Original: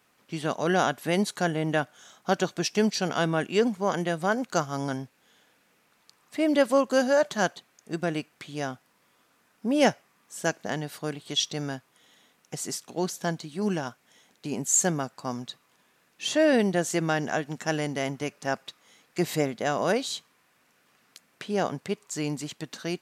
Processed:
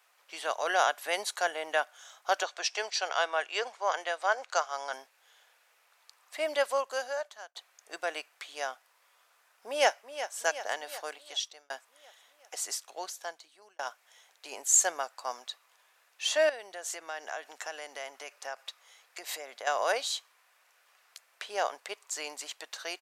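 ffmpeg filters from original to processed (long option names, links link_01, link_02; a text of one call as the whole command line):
ffmpeg -i in.wav -filter_complex "[0:a]asettb=1/sr,asplit=3[link_01][link_02][link_03];[link_01]atrim=end=2.434[link_04];[link_02]atrim=start=2.43:end=4.93,asetpts=PTS-STARTPTS,afade=type=in:duration=0.004:curve=qsin,afade=type=out:start_time=2.496:duration=0.004:curve=qsin,highpass=410,lowpass=6800[link_05];[link_03]atrim=start=4.926[link_06];[link_04][link_05]acrossfade=duration=0.004:curve1=hsin:curve2=qsin[link_07];[link_07][link_06]acrossfade=duration=0.004:curve1=qsin:curve2=hsin,asplit=2[link_08][link_09];[link_09]afade=type=in:start_time=9.66:duration=0.01,afade=type=out:start_time=10.36:duration=0.01,aecho=0:1:370|740|1110|1480|1850|2220|2590:0.266073|0.159644|0.0957861|0.0574717|0.034483|0.0206898|0.0124139[link_10];[link_08][link_10]amix=inputs=2:normalize=0,asettb=1/sr,asplit=3[link_11][link_12][link_13];[link_11]atrim=end=16.494[link_14];[link_12]atrim=start=16.49:end=19.67,asetpts=PTS-STARTPTS,afade=type=in:duration=0.004:curve=qsin,afade=type=out:start_time=3.176:duration=0.004:curve=qsin,acompressor=threshold=-31dB:ratio=6:attack=3.2:release=140:knee=1:detection=peak[link_15];[link_13]atrim=start=19.666[link_16];[link_14][link_15]acrossfade=duration=0.004:curve1=hsin:curve2=qsin[link_17];[link_17][link_16]acrossfade=duration=0.004:curve1=qsin:curve2=hsin,asplit=4[link_18][link_19][link_20][link_21];[link_18]atrim=end=7.55,asetpts=PTS-STARTPTS,afade=type=out:start_time=6.37:duration=1.18[link_22];[link_19]atrim=start=7.55:end=11.7,asetpts=PTS-STARTPTS,afade=type=in:duration=0.004:curve=hsin,afade=type=out:start_time=3.45:duration=0.7[link_23];[link_20]atrim=start=11.7:end=13.79,asetpts=PTS-STARTPTS,afade=type=in:duration=0.004:curve=hsin,afade=type=out:start_time=0.92:duration=1.17[link_24];[link_21]atrim=start=13.79,asetpts=PTS-STARTPTS,afade=type=in:duration=0.004:curve=hsin[link_25];[link_22][link_23][link_24][link_25]concat=n=4:v=0:a=1,highpass=frequency=590:width=0.5412,highpass=frequency=590:width=1.3066" out.wav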